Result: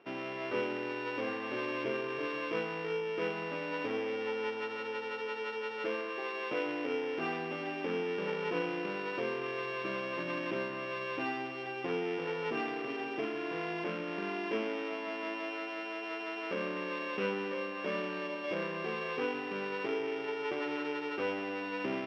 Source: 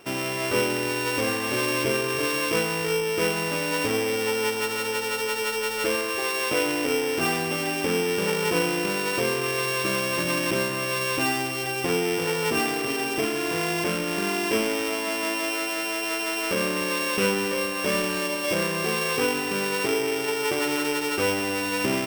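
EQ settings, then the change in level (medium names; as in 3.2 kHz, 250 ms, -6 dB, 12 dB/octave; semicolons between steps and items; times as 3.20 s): band-pass 200–4600 Hz; distance through air 220 m; -8.5 dB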